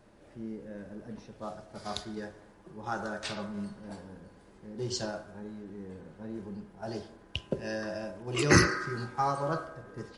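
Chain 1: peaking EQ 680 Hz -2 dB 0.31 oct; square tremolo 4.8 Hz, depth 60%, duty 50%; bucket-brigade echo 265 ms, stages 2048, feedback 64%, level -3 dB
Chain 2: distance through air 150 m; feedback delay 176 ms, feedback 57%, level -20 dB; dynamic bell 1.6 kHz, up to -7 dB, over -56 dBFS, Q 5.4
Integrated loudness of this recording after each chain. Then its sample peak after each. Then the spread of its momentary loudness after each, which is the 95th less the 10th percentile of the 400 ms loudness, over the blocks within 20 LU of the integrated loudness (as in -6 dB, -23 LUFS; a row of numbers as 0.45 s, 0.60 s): -34.0 LUFS, -35.5 LUFS; -7.5 dBFS, -8.5 dBFS; 16 LU, 15 LU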